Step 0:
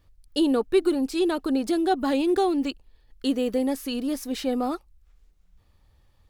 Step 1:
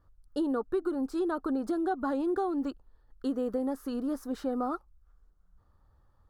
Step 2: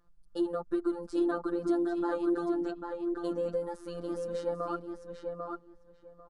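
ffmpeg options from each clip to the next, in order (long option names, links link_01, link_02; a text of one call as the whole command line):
ffmpeg -i in.wav -af "highshelf=frequency=1800:width_type=q:width=3:gain=-9.5,acompressor=threshold=-23dB:ratio=4,volume=-4dB" out.wav
ffmpeg -i in.wav -filter_complex "[0:a]asplit=2[link_01][link_02];[link_02]adelay=795,lowpass=frequency=3600:poles=1,volume=-4dB,asplit=2[link_03][link_04];[link_04]adelay=795,lowpass=frequency=3600:poles=1,volume=0.17,asplit=2[link_05][link_06];[link_06]adelay=795,lowpass=frequency=3600:poles=1,volume=0.17[link_07];[link_01][link_03][link_05][link_07]amix=inputs=4:normalize=0,afftfilt=real='hypot(re,im)*cos(PI*b)':imag='0':win_size=1024:overlap=0.75,aresample=22050,aresample=44100,volume=2dB" out.wav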